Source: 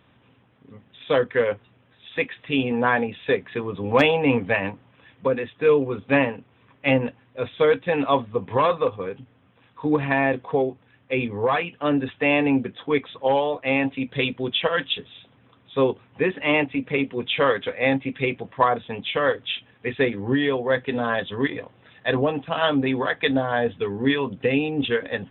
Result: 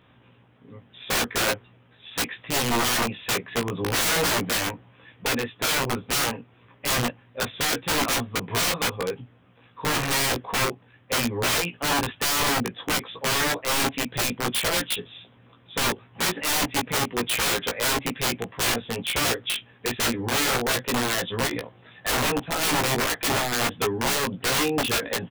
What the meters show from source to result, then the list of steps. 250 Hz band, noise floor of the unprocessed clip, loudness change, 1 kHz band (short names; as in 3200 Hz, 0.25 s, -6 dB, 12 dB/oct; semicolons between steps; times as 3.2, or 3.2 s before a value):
-6.0 dB, -59 dBFS, -1.0 dB, -1.5 dB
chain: wrapped overs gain 19.5 dB; doubler 17 ms -4 dB